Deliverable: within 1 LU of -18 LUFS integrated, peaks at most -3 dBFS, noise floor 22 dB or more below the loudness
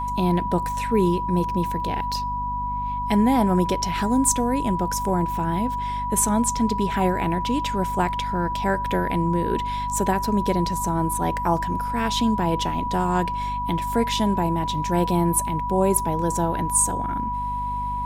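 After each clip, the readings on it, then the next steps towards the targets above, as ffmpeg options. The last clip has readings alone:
hum 50 Hz; highest harmonic 250 Hz; hum level -30 dBFS; steady tone 980 Hz; tone level -25 dBFS; loudness -23.0 LUFS; peak level -6.5 dBFS; loudness target -18.0 LUFS
-> -af "bandreject=f=50:t=h:w=4,bandreject=f=100:t=h:w=4,bandreject=f=150:t=h:w=4,bandreject=f=200:t=h:w=4,bandreject=f=250:t=h:w=4"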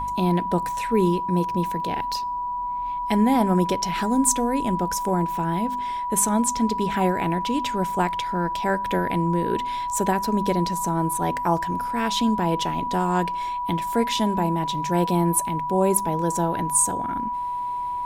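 hum not found; steady tone 980 Hz; tone level -25 dBFS
-> -af "bandreject=f=980:w=30"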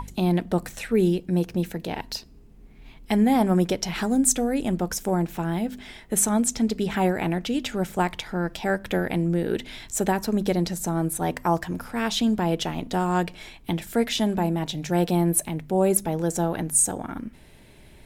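steady tone not found; loudness -24.5 LUFS; peak level -8.0 dBFS; loudness target -18.0 LUFS
-> -af "volume=2.11,alimiter=limit=0.708:level=0:latency=1"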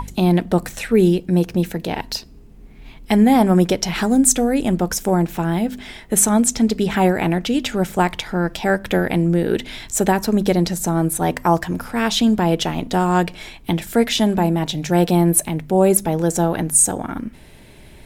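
loudness -18.0 LUFS; peak level -3.0 dBFS; noise floor -43 dBFS

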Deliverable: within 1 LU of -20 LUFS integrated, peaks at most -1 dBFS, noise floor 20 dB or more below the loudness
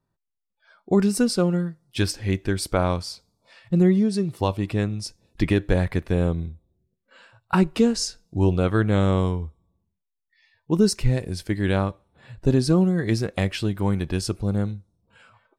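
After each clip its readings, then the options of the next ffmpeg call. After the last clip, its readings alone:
loudness -23.5 LUFS; peak level -7.5 dBFS; loudness target -20.0 LUFS
-> -af "volume=1.5"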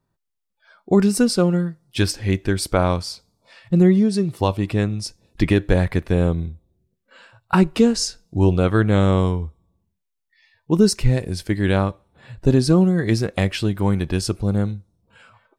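loudness -20.0 LUFS; peak level -4.0 dBFS; noise floor -77 dBFS

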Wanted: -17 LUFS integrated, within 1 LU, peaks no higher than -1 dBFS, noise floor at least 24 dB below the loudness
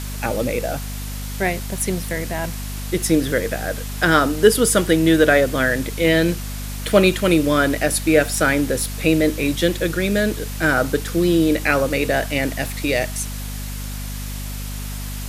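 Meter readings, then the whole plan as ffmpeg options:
hum 50 Hz; highest harmonic 250 Hz; hum level -27 dBFS; noise floor -29 dBFS; noise floor target -43 dBFS; loudness -19.0 LUFS; peak level -1.5 dBFS; loudness target -17.0 LUFS
-> -af "bandreject=f=50:t=h:w=4,bandreject=f=100:t=h:w=4,bandreject=f=150:t=h:w=4,bandreject=f=200:t=h:w=4,bandreject=f=250:t=h:w=4"
-af "afftdn=nr=14:nf=-29"
-af "volume=1.26,alimiter=limit=0.891:level=0:latency=1"

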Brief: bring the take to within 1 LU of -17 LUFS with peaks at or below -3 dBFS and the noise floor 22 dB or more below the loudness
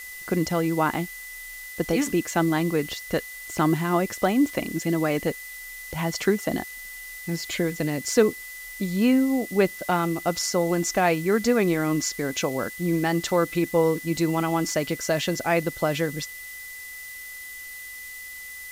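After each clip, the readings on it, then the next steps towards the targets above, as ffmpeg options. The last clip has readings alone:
steady tone 2 kHz; tone level -38 dBFS; noise floor -39 dBFS; noise floor target -47 dBFS; loudness -24.5 LUFS; peak level -5.5 dBFS; loudness target -17.0 LUFS
-> -af "bandreject=f=2000:w=30"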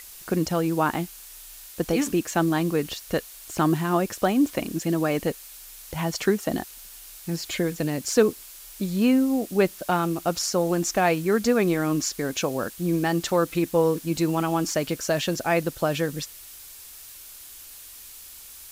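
steady tone not found; noise floor -44 dBFS; noise floor target -47 dBFS
-> -af "afftdn=nr=6:nf=-44"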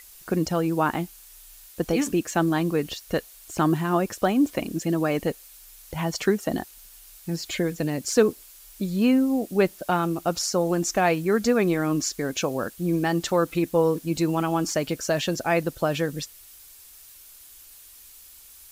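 noise floor -49 dBFS; loudness -25.0 LUFS; peak level -6.0 dBFS; loudness target -17.0 LUFS
-> -af "volume=2.51,alimiter=limit=0.708:level=0:latency=1"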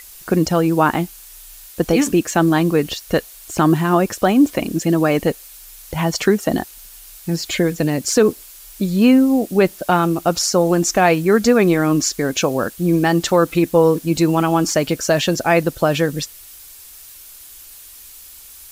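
loudness -17.0 LUFS; peak level -3.0 dBFS; noise floor -41 dBFS

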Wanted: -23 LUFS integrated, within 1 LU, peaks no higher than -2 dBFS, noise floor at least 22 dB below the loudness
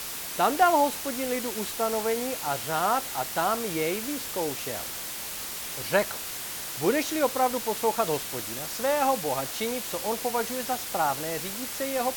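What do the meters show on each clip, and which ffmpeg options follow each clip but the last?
noise floor -36 dBFS; noise floor target -50 dBFS; loudness -27.5 LUFS; peak level -9.5 dBFS; loudness target -23.0 LUFS
-> -af "afftdn=nr=14:nf=-36"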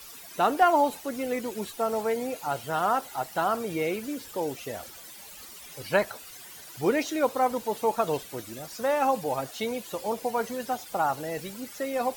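noise floor -46 dBFS; noise floor target -51 dBFS
-> -af "afftdn=nr=6:nf=-46"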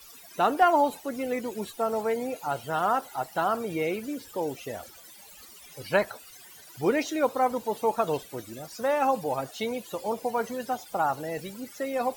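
noise floor -50 dBFS; noise floor target -51 dBFS
-> -af "afftdn=nr=6:nf=-50"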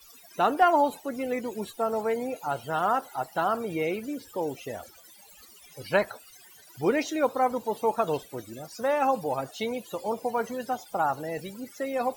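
noise floor -53 dBFS; loudness -28.5 LUFS; peak level -10.0 dBFS; loudness target -23.0 LUFS
-> -af "volume=1.88"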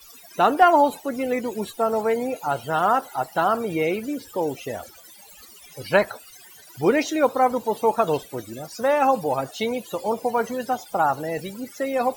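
loudness -23.0 LUFS; peak level -4.5 dBFS; noise floor -47 dBFS

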